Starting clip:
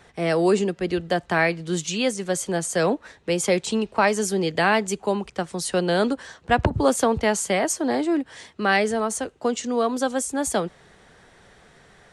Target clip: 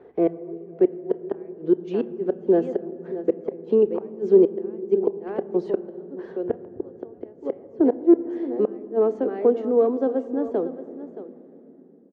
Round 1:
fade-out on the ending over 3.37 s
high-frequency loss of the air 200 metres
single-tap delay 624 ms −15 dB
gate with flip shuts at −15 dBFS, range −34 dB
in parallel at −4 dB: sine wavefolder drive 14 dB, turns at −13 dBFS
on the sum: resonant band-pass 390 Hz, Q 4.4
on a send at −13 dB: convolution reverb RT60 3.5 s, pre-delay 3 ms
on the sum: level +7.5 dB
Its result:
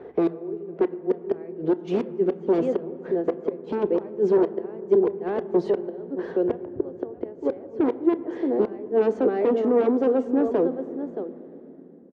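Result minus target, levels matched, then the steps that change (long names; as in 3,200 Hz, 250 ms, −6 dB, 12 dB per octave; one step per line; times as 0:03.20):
sine wavefolder: distortion +23 dB
change: sine wavefolder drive 4 dB, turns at −13 dBFS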